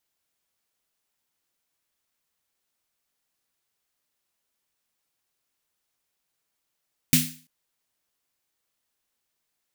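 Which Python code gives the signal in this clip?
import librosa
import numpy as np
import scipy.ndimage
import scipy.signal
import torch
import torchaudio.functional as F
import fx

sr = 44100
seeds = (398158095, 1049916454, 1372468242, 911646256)

y = fx.drum_snare(sr, seeds[0], length_s=0.34, hz=160.0, second_hz=250.0, noise_db=2.0, noise_from_hz=2000.0, decay_s=0.39, noise_decay_s=0.4)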